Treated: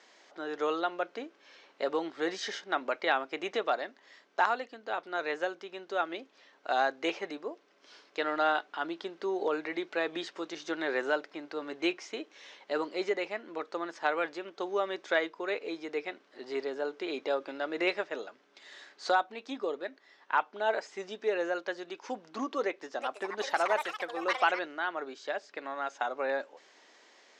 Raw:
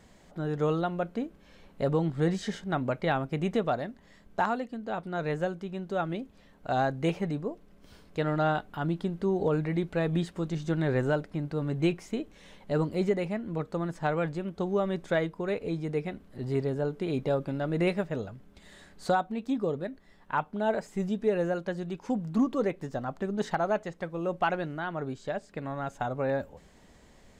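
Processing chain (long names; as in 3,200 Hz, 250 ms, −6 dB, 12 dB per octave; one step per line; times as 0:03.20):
elliptic band-pass filter 320–5,900 Hz, stop band 50 dB
tilt shelving filter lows −6 dB, about 740 Hz
0:22.62–0:24.86: delay with pitch and tempo change per echo 387 ms, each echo +6 semitones, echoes 2, each echo −6 dB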